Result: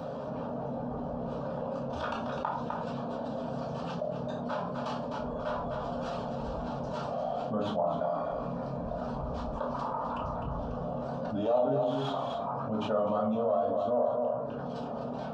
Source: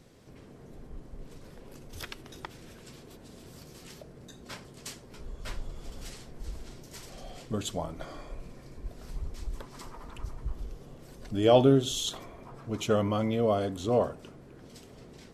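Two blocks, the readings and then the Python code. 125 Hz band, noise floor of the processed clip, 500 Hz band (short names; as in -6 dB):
-2.5 dB, -37 dBFS, +0.5 dB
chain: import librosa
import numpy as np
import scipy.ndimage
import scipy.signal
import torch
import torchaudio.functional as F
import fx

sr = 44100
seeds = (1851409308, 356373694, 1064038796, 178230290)

y = fx.tracing_dist(x, sr, depth_ms=0.21)
y = scipy.signal.sosfilt(scipy.signal.butter(2, 300.0, 'highpass', fs=sr, output='sos'), y)
y = fx.dereverb_blind(y, sr, rt60_s=0.67)
y = fx.high_shelf(y, sr, hz=3200.0, db=-8.0)
y = fx.rider(y, sr, range_db=3, speed_s=0.5)
y = fx.spacing_loss(y, sr, db_at_10k=41)
y = fx.fixed_phaser(y, sr, hz=840.0, stages=4)
y = y + 10.0 ** (-10.0 / 20.0) * np.pad(y, (int(255 * sr / 1000.0), 0))[:len(y)]
y = fx.room_shoebox(y, sr, seeds[0], volume_m3=390.0, walls='furnished', distance_m=2.6)
y = fx.env_flatten(y, sr, amount_pct=70)
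y = y * librosa.db_to_amplitude(-7.0)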